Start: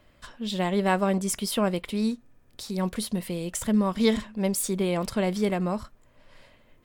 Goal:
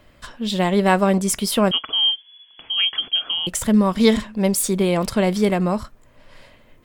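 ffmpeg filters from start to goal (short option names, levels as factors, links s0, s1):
-filter_complex "[0:a]asettb=1/sr,asplit=3[s0][s1][s2];[s0]atrim=end=1.714[s3];[s1]atrim=start=1.71:end=3.47,asetpts=PTS-STARTPTS,afade=t=in:d=0.004:c=qsin,afade=t=out:st=1.756:d=0.004:c=qsin,lowpass=f=2900:t=q:w=0.5098,lowpass=f=2900:t=q:w=0.6013,lowpass=f=2900:t=q:w=0.9,lowpass=f=2900:t=q:w=2.563,afreqshift=-3400[s4];[s2]atrim=start=3.466[s5];[s3][s4]acrossfade=d=0.004:c1=hsin:c2=qsin[s6];[s6][s5]acrossfade=d=0.004:c1=qsin:c2=hsin,volume=2.24"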